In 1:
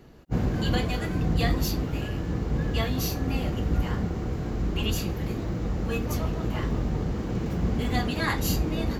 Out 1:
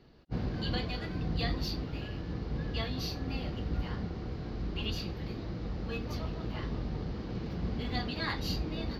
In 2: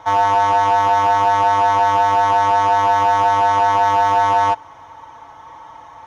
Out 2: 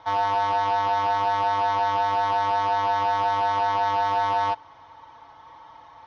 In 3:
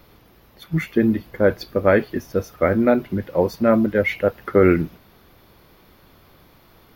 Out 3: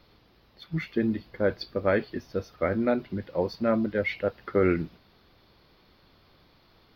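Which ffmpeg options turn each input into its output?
-af "highshelf=f=6100:t=q:w=3:g=-10.5,volume=0.376"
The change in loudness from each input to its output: -8.0 LU, -8.0 LU, -8.5 LU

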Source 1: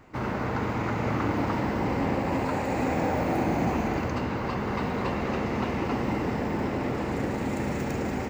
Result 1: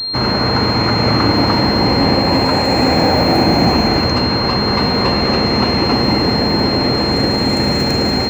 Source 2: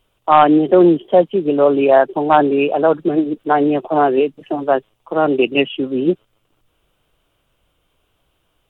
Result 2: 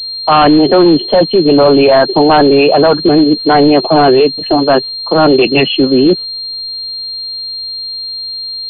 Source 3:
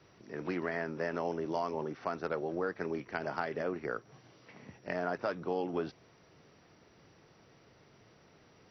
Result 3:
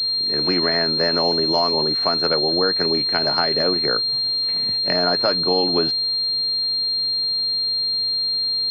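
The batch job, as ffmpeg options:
-af "apsyclip=6.31,aeval=exprs='val(0)+0.158*sin(2*PI*4200*n/s)':c=same,volume=0.708"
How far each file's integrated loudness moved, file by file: +14.5 LU, +5.5 LU, +18.5 LU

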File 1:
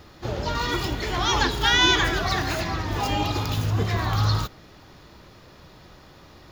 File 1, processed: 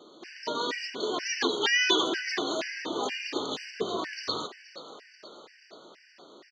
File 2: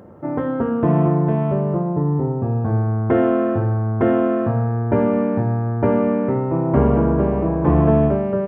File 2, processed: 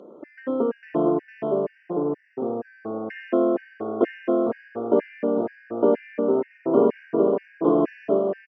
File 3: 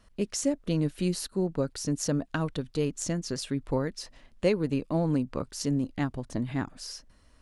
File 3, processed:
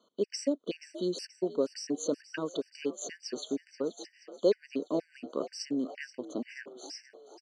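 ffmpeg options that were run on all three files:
-filter_complex "[0:a]highpass=f=260:w=0.5412,highpass=f=260:w=1.3066,equalizer=f=420:t=q:w=4:g=4,equalizer=f=830:t=q:w=4:g=-8,equalizer=f=1400:t=q:w=4:g=-7,lowpass=f=6600:w=0.5412,lowpass=f=6600:w=1.3066,asplit=7[s0][s1][s2][s3][s4][s5][s6];[s1]adelay=479,afreqshift=55,volume=0.168[s7];[s2]adelay=958,afreqshift=110,volume=0.101[s8];[s3]adelay=1437,afreqshift=165,volume=0.0603[s9];[s4]adelay=1916,afreqshift=220,volume=0.0363[s10];[s5]adelay=2395,afreqshift=275,volume=0.0219[s11];[s6]adelay=2874,afreqshift=330,volume=0.013[s12];[s0][s7][s8][s9][s10][s11][s12]amix=inputs=7:normalize=0,afftfilt=real='re*gt(sin(2*PI*2.1*pts/sr)*(1-2*mod(floor(b*sr/1024/1500),2)),0)':imag='im*gt(sin(2*PI*2.1*pts/sr)*(1-2*mod(floor(b*sr/1024/1500),2)),0)':win_size=1024:overlap=0.75"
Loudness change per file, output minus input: -6.0 LU, -5.5 LU, -4.5 LU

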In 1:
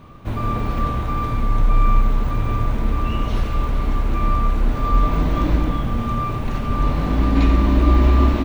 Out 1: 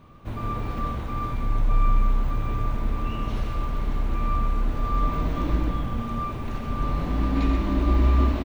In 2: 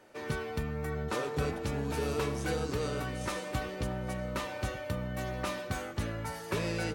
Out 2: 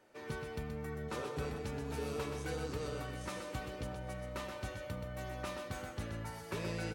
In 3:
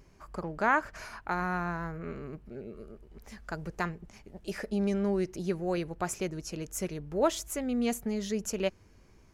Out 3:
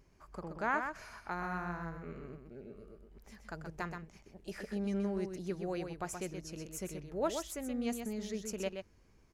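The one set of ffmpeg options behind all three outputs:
-af "aecho=1:1:126:0.473,volume=0.422"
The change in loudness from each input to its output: -6.0 LU, -6.5 LU, -6.5 LU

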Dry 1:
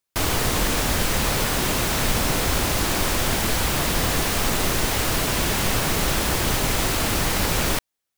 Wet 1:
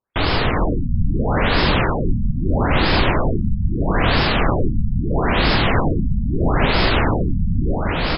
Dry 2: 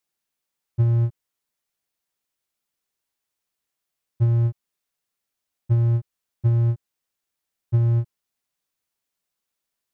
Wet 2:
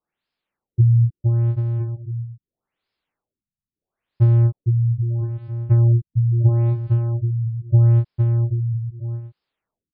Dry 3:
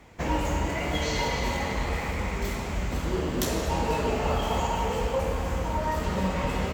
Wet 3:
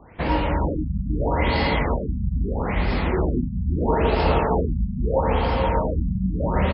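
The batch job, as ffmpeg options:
-af "aecho=1:1:460|782|1007|1165|1276:0.631|0.398|0.251|0.158|0.1,afftfilt=real='re*lt(b*sr/1024,220*pow(5400/220,0.5+0.5*sin(2*PI*0.77*pts/sr)))':imag='im*lt(b*sr/1024,220*pow(5400/220,0.5+0.5*sin(2*PI*0.77*pts/sr)))':win_size=1024:overlap=0.75,volume=1.78"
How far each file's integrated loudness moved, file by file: +2.5 LU, +3.5 LU, +5.0 LU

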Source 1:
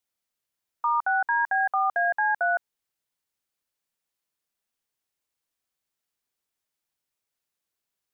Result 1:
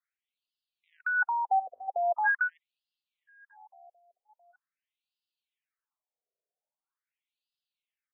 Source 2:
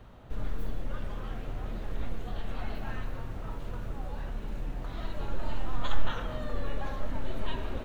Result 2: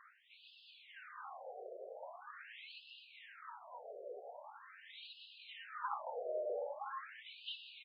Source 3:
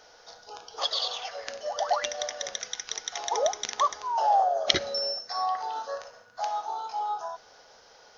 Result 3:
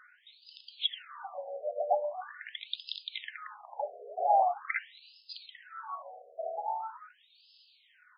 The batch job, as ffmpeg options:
-filter_complex "[0:a]aphaser=in_gain=1:out_gain=1:delay=3.9:decay=0.35:speed=0.31:type=sinusoidal,asplit=2[s0][s1];[s1]adelay=662,lowpass=f=3600:p=1,volume=0.0631,asplit=2[s2][s3];[s3]adelay=662,lowpass=f=3600:p=1,volume=0.52,asplit=2[s4][s5];[s5]adelay=662,lowpass=f=3600:p=1,volume=0.52[s6];[s0][s2][s4][s6]amix=inputs=4:normalize=0,afftfilt=real='re*between(b*sr/1024,510*pow(3700/510,0.5+0.5*sin(2*PI*0.43*pts/sr))/1.41,510*pow(3700/510,0.5+0.5*sin(2*PI*0.43*pts/sr))*1.41)':imag='im*between(b*sr/1024,510*pow(3700/510,0.5+0.5*sin(2*PI*0.43*pts/sr))/1.41,510*pow(3700/510,0.5+0.5*sin(2*PI*0.43*pts/sr))*1.41)':win_size=1024:overlap=0.75"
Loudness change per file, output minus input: -4.0 LU, -8.5 LU, -5.5 LU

